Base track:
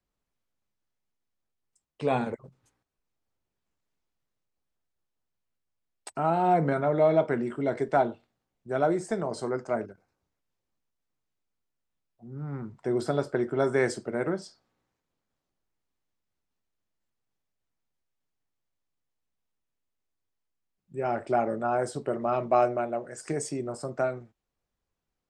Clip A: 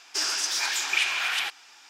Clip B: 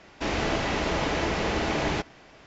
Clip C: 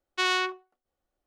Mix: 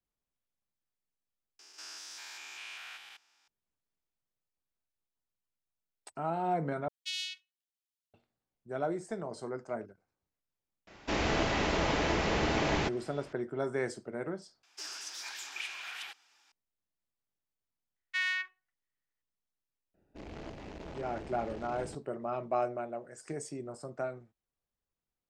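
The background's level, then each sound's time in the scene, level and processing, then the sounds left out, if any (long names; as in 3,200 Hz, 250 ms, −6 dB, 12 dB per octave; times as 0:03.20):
base track −8.5 dB
0:01.59: overwrite with A −17.5 dB + spectrum averaged block by block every 200 ms
0:06.88: overwrite with C −5.5 dB + inverse Chebyshev high-pass filter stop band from 1,100 Hz, stop band 50 dB
0:10.87: mix in B −3 dB
0:14.63: overwrite with A −15.5 dB
0:17.96: mix in C −13.5 dB + high-pass with resonance 1,900 Hz, resonance Q 7
0:19.94: mix in B −16 dB + adaptive Wiener filter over 41 samples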